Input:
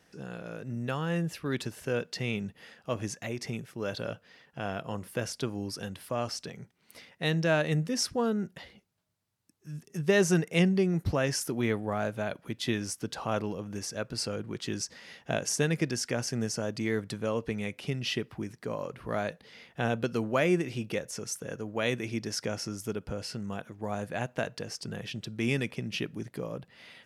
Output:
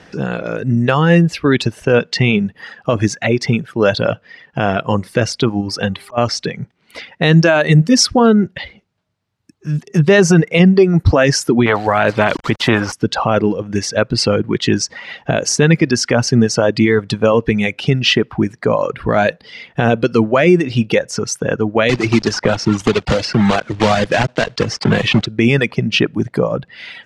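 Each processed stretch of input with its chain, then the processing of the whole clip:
0:05.60–0:06.17: volume swells 272 ms + hum with harmonics 400 Hz, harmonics 3, −61 dBFS −6 dB per octave
0:07.32–0:08.34: high-shelf EQ 6,400 Hz +6 dB + notch filter 490 Hz, Q 14
0:11.66–0:12.93: low-pass filter 1,500 Hz + centre clipping without the shift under −54.5 dBFS + every bin compressed towards the loudest bin 2 to 1
0:21.89–0:25.26: one scale factor per block 3 bits + low-pass filter 7,500 Hz + multiband upward and downward compressor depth 100%
whole clip: Bessel low-pass filter 3,800 Hz, order 2; reverb reduction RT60 1.5 s; boost into a limiter +23 dB; level −1 dB

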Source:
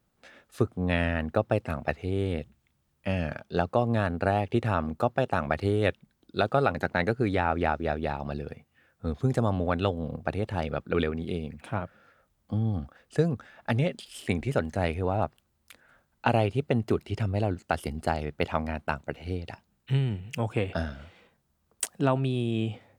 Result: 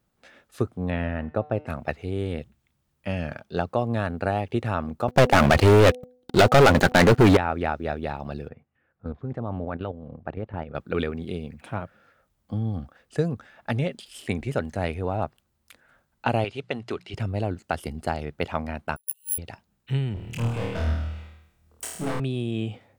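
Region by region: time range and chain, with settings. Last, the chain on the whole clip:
0:00.90–0:01.67: low-pass filter 1,400 Hz 6 dB per octave + hum removal 150.3 Hz, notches 38
0:05.08–0:07.37: leveller curve on the samples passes 5 + hum removal 249.9 Hz, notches 3
0:08.48–0:10.75: low-pass filter 1,900 Hz + output level in coarse steps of 10 dB + highs frequency-modulated by the lows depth 0.12 ms
0:16.44–0:17.14: low-pass filter 4,200 Hz + spectral tilt +3.5 dB per octave + mains-hum notches 60/120/180 Hz
0:18.96–0:19.38: bad sample-rate conversion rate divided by 4×, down filtered, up zero stuff + linear-phase brick-wall high-pass 2,600 Hz + expander for the loud parts 2.5 to 1, over −37 dBFS
0:20.14–0:22.20: low-shelf EQ 120 Hz +9 dB + gain into a clipping stage and back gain 28.5 dB + flutter between parallel walls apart 4.4 metres, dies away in 0.81 s
whole clip: no processing

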